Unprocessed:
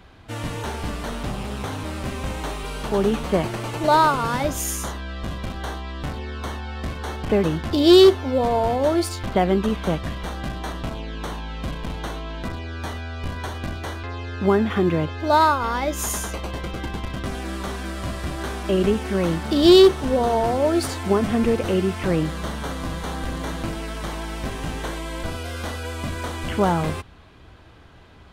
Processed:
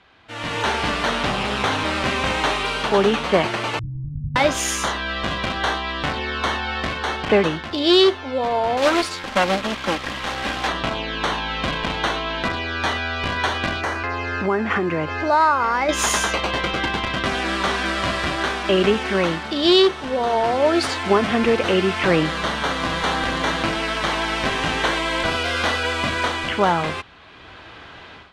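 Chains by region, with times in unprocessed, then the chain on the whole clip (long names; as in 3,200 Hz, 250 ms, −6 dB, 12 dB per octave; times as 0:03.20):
0:03.79–0:04.36: inverse Chebyshev low-pass filter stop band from 610 Hz, stop band 70 dB + spectral tilt −3 dB per octave
0:08.77–0:10.68: lower of the sound and its delayed copy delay 3.7 ms + log-companded quantiser 4 bits
0:13.81–0:15.89: parametric band 3,500 Hz −14 dB 0.45 octaves + downward compressor 2.5 to 1, threshold −28 dBFS
whole clip: low-pass filter 3,100 Hz 12 dB per octave; spectral tilt +3.5 dB per octave; automatic gain control gain up to 15 dB; level −3 dB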